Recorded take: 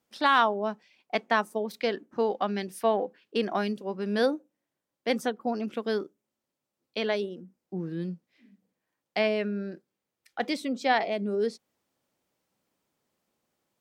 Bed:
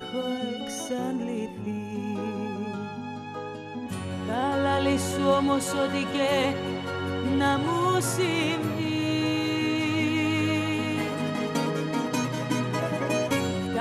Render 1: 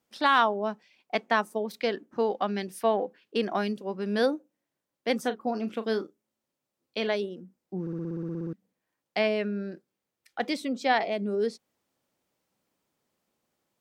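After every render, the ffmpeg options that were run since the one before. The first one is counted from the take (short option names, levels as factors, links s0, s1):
-filter_complex "[0:a]asettb=1/sr,asplit=3[s0][s1][s2];[s0]atrim=end=5.214[s3];[s1]atrim=start=5.21:end=7.08,asetpts=PTS-STARTPTS,afade=t=in:d=0.004:c=qsin,afade=t=out:st=1.866:d=0.004:c=qsin,asplit=2[s4][s5];[s5]adelay=36,volume=0.237[s6];[s4][s6]amix=inputs=2:normalize=0,atrim=end_sample=82467[s7];[s2]atrim=start=7.076[s8];[s3][s7]acrossfade=d=0.004:c1=hsin:c2=qsin[s9];[s9][s8]acrossfade=d=0.004:c1=qsin:c2=hsin,asplit=13[s10][s11][s12][s13][s14][s15][s16][s17][s18][s19][s20][s21][s22];[s10]atrim=end=7.872[s23];[s11]atrim=start=7.808:end=7.872[s24];[s12]atrim=start=7.808:end=7.872[s25];[s13]atrim=start=7.808:end=7.872[s26];[s14]atrim=start=7.808:end=7.872[s27];[s15]atrim=start=7.808:end=7.872[s28];[s16]atrim=start=7.808:end=7.872[s29];[s17]atrim=start=7.808:end=7.872[s30];[s18]atrim=start=7.808:end=7.872[s31];[s19]atrim=start=7.808:end=7.872[s32];[s20]atrim=start=7.808:end=7.872[s33];[s21]atrim=start=7.808:end=7.872[s34];[s22]atrim=start=8.528[s35];[s23][s24]acrossfade=d=0.004:c1=hsin:c2=hsin[s36];[s36][s25]acrossfade=d=0.004:c1=hsin:c2=hsin[s37];[s37][s26]acrossfade=d=0.004:c1=hsin:c2=hsin[s38];[s38][s27]acrossfade=d=0.004:c1=hsin:c2=hsin[s39];[s39][s28]acrossfade=d=0.004:c1=hsin:c2=hsin[s40];[s40][s29]acrossfade=d=0.004:c1=hsin:c2=hsin[s41];[s41][s30]acrossfade=d=0.004:c1=hsin:c2=hsin[s42];[s42][s31]acrossfade=d=0.004:c1=hsin:c2=hsin[s43];[s43][s32]acrossfade=d=0.004:c1=hsin:c2=hsin[s44];[s44][s33]acrossfade=d=0.004:c1=hsin:c2=hsin[s45];[s45][s34]acrossfade=d=0.004:c1=hsin:c2=hsin[s46];[s46][s35]acrossfade=d=0.004:c1=hsin:c2=hsin"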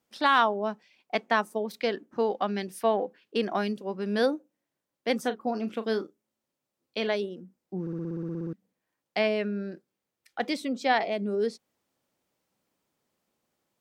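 -af anull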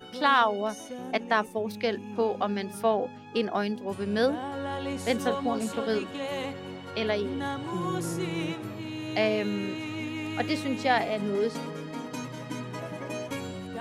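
-filter_complex "[1:a]volume=0.355[s0];[0:a][s0]amix=inputs=2:normalize=0"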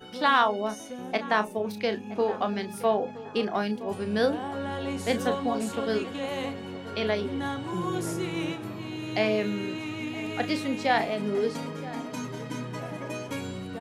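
-filter_complex "[0:a]asplit=2[s0][s1];[s1]adelay=33,volume=0.299[s2];[s0][s2]amix=inputs=2:normalize=0,asplit=2[s3][s4];[s4]adelay=969,lowpass=f=1800:p=1,volume=0.158,asplit=2[s5][s6];[s6]adelay=969,lowpass=f=1800:p=1,volume=0.38,asplit=2[s7][s8];[s8]adelay=969,lowpass=f=1800:p=1,volume=0.38[s9];[s3][s5][s7][s9]amix=inputs=4:normalize=0"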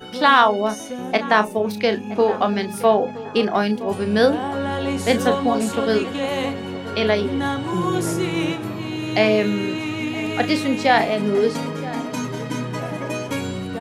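-af "volume=2.66,alimiter=limit=0.794:level=0:latency=1"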